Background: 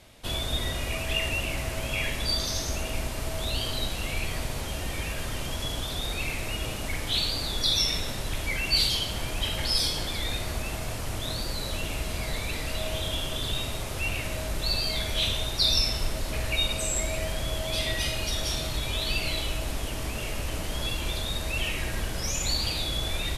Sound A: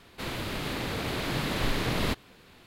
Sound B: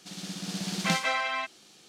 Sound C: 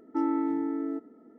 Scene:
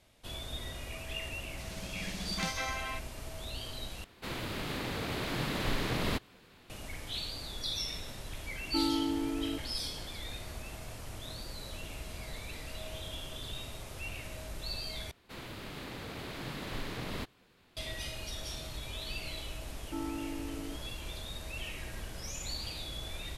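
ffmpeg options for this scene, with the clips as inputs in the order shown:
ffmpeg -i bed.wav -i cue0.wav -i cue1.wav -i cue2.wav -filter_complex "[1:a]asplit=2[link_01][link_02];[3:a]asplit=2[link_03][link_04];[0:a]volume=-11.5dB,asplit=3[link_05][link_06][link_07];[link_05]atrim=end=4.044[link_08];[link_01]atrim=end=2.66,asetpts=PTS-STARTPTS,volume=-4dB[link_09];[link_06]atrim=start=6.696:end=15.114[link_10];[link_02]atrim=end=2.66,asetpts=PTS-STARTPTS,volume=-10.5dB[link_11];[link_07]atrim=start=17.766[link_12];[2:a]atrim=end=1.88,asetpts=PTS-STARTPTS,volume=-8.5dB,afade=type=in:duration=0.004:curve=hsin,afade=type=out:start_time=1.876:duration=0.004:curve=hsin,adelay=1530[link_13];[link_03]atrim=end=1.38,asetpts=PTS-STARTPTS,volume=-4dB,afade=type=in:duration=0.004:curve=hsin,afade=type=out:start_time=1.376:duration=0.004:curve=hsin,adelay=8590[link_14];[link_04]atrim=end=1.38,asetpts=PTS-STARTPTS,volume=-11dB,afade=type=in:duration=0.004:curve=hsin,afade=type=out:start_time=1.376:duration=0.004:curve=hsin,adelay=19770[link_15];[link_08][link_09]acrossfade=duration=0.004:curve1=hsin:curve2=hsin[link_16];[link_16][link_10]acrossfade=duration=0.004:curve1=hsin:curve2=hsin[link_17];[link_17][link_11]acrossfade=duration=0.004:curve1=hsin:curve2=hsin[link_18];[link_18][link_12]acrossfade=duration=0.004:curve1=hsin:curve2=hsin[link_19];[link_19][link_13][link_14][link_15]amix=inputs=4:normalize=0" out.wav

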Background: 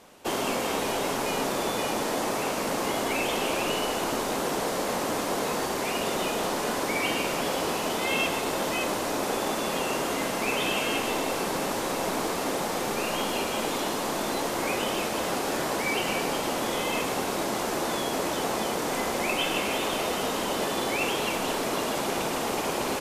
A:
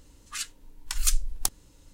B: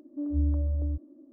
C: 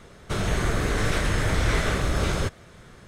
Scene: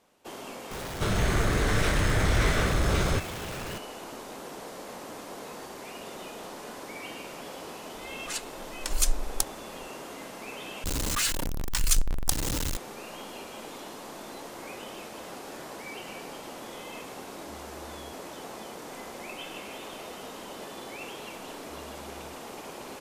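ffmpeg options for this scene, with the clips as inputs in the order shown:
ffmpeg -i bed.wav -i cue0.wav -i cue1.wav -i cue2.wav -filter_complex "[1:a]asplit=2[link_01][link_02];[2:a]asplit=2[link_03][link_04];[0:a]volume=-13dB[link_05];[3:a]aeval=exprs='val(0)+0.5*0.0251*sgn(val(0))':channel_layout=same[link_06];[link_02]aeval=exprs='val(0)+0.5*0.0891*sgn(val(0))':channel_layout=same[link_07];[link_03]acompressor=threshold=-40dB:ratio=6:attack=3.2:release=140:knee=1:detection=peak[link_08];[link_04]asoftclip=type=tanh:threshold=-35dB[link_09];[link_05]asplit=2[link_10][link_11];[link_10]atrim=end=10.844[link_12];[link_07]atrim=end=1.93,asetpts=PTS-STARTPTS,volume=-2dB[link_13];[link_11]atrim=start=12.766[link_14];[link_06]atrim=end=3.07,asetpts=PTS-STARTPTS,volume=-2dB,afade=type=in:duration=0.004:curve=hsin,afade=type=out:start_time=3.066:duration=0.004:curve=hsin,adelay=710[link_15];[link_01]atrim=end=1.93,asetpts=PTS-STARTPTS,volume=-1dB,afade=type=in:duration=0.004:curve=hsin,afade=type=out:start_time=1.926:duration=0.004:curve=hsin,adelay=7950[link_16];[link_08]atrim=end=1.32,asetpts=PTS-STARTPTS,volume=-10dB,afade=type=in:duration=0.004:curve=hsin,afade=type=out:start_time=1.316:duration=0.004:curve=hsin,adelay=17150[link_17];[link_09]atrim=end=1.32,asetpts=PTS-STARTPTS,volume=-15.5dB,afade=type=in:duration=0.004:curve=hsin,afade=type=out:start_time=1.316:duration=0.004:curve=hsin,adelay=21360[link_18];[link_12][link_13]acrossfade=duration=0.004:curve1=hsin:curve2=hsin[link_19];[link_19][link_14]acrossfade=duration=0.004:curve1=hsin:curve2=hsin[link_20];[link_20][link_15][link_16][link_17][link_18]amix=inputs=5:normalize=0" out.wav

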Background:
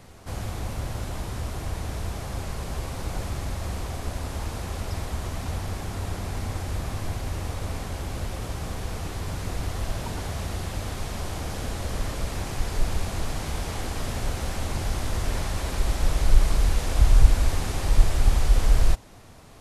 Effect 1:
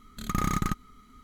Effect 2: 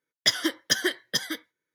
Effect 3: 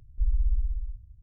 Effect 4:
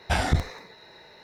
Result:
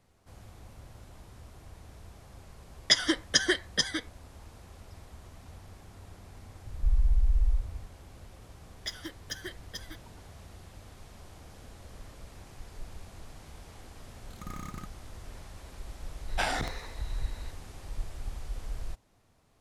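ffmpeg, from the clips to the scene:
ffmpeg -i bed.wav -i cue0.wav -i cue1.wav -i cue2.wav -i cue3.wav -filter_complex "[2:a]asplit=2[link_01][link_02];[0:a]volume=-18.5dB[link_03];[link_01]aresample=22050,aresample=44100[link_04];[3:a]alimiter=level_in=27dB:limit=-1dB:release=50:level=0:latency=1[link_05];[4:a]highpass=frequency=490:poles=1[link_06];[link_04]atrim=end=1.74,asetpts=PTS-STARTPTS,volume=-0.5dB,afade=type=in:duration=0.004:curve=hsin,afade=type=out:start_time=1.736:duration=0.004:curve=hsin,adelay=2640[link_07];[link_05]atrim=end=1.22,asetpts=PTS-STARTPTS,volume=-17.5dB,afade=type=in:duration=0.004:curve=hsin,afade=type=out:start_time=1.216:duration=0.004:curve=hsin,adelay=6650[link_08];[link_02]atrim=end=1.74,asetpts=PTS-STARTPTS,volume=-15.5dB,afade=type=in:duration=0.004:curve=hsin,afade=type=out:start_time=1.736:duration=0.004:curve=hsin,adelay=8600[link_09];[1:a]atrim=end=1.23,asetpts=PTS-STARTPTS,volume=-14.5dB,afade=type=in:duration=0.004:curve=hsin,afade=type=out:start_time=1.226:duration=0.004:curve=hsin,adelay=622692S[link_10];[link_06]atrim=end=1.23,asetpts=PTS-STARTPTS,volume=-2.5dB,afade=type=in:duration=0.004:curve=hsin,afade=type=out:start_time=1.226:duration=0.004:curve=hsin,adelay=16280[link_11];[link_03][link_07][link_08][link_09][link_10][link_11]amix=inputs=6:normalize=0" out.wav

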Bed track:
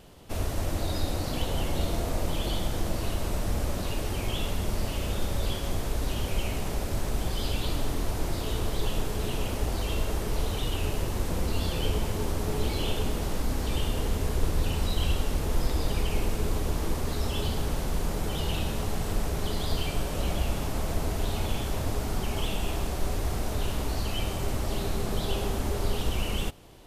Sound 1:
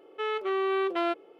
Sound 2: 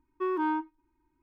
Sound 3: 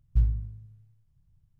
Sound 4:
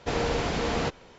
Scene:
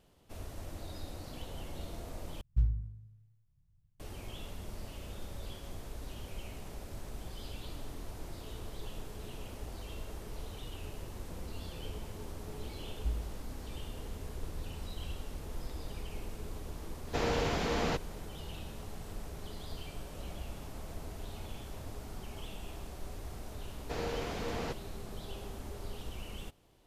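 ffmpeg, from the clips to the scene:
ffmpeg -i bed.wav -i cue0.wav -i cue1.wav -i cue2.wav -i cue3.wav -filter_complex "[3:a]asplit=2[link_01][link_02];[4:a]asplit=2[link_03][link_04];[0:a]volume=-14.5dB[link_05];[link_02]aecho=1:1:3.8:0.65[link_06];[link_04]equalizer=frequency=430:width_type=o:width=0.77:gain=2.5[link_07];[link_05]asplit=2[link_08][link_09];[link_08]atrim=end=2.414[link_10];[link_01]atrim=end=1.59,asetpts=PTS-STARTPTS,volume=-5.5dB[link_11];[link_09]atrim=start=3.996[link_12];[link_06]atrim=end=1.59,asetpts=PTS-STARTPTS,volume=-13.5dB,afade=type=in:duration=0.004:curve=hsin,afade=type=out:start_time=1.586:duration=0.004:curve=hsin,adelay=12890[link_13];[link_03]atrim=end=1.18,asetpts=PTS-STARTPTS,volume=-4.5dB,afade=type=in:duration=0.004:curve=hsin,afade=type=out:start_time=1.176:duration=0.004:curve=hsin,adelay=17070[link_14];[link_07]atrim=end=1.18,asetpts=PTS-STARTPTS,volume=-11dB,afade=type=in:duration=0.004:curve=hsin,afade=type=out:start_time=1.176:duration=0.004:curve=hsin,adelay=23830[link_15];[link_10][link_11]acrossfade=duration=0.004:curve1=hsin:curve2=hsin[link_16];[link_16][link_12]acrossfade=duration=0.004:curve1=hsin:curve2=hsin[link_17];[link_17][link_13][link_14][link_15]amix=inputs=4:normalize=0" out.wav

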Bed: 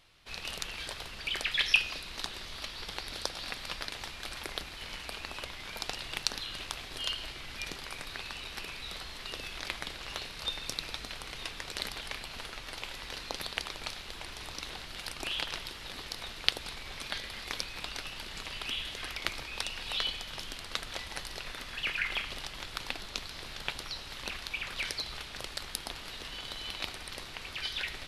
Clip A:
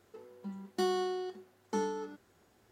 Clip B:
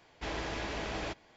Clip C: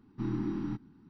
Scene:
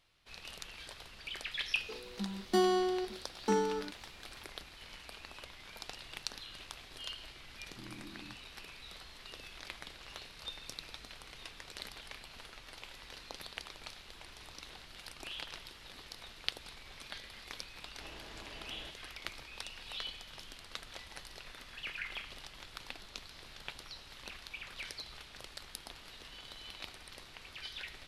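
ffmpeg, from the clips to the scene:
ffmpeg -i bed.wav -i cue0.wav -i cue1.wav -i cue2.wav -filter_complex "[0:a]volume=-9dB[link_01];[1:a]acontrast=57,atrim=end=2.71,asetpts=PTS-STARTPTS,volume=-3dB,afade=type=in:duration=0.004:curve=hsin,afade=type=out:start_time=2.706:duration=0.004:curve=hsin,adelay=1750[link_02];[3:a]atrim=end=1.09,asetpts=PTS-STARTPTS,volume=-17.5dB,afade=type=in:duration=0.004:curve=hsin,afade=type=out:start_time=1.086:duration=0.004:curve=hsin,adelay=7580[link_03];[2:a]atrim=end=1.36,asetpts=PTS-STARTPTS,volume=-15dB,afade=type=in:duration=0.004:curve=hsin,afade=type=out:start_time=1.356:duration=0.004:curve=hsin,adelay=17780[link_04];[link_01][link_02][link_03][link_04]amix=inputs=4:normalize=0" out.wav

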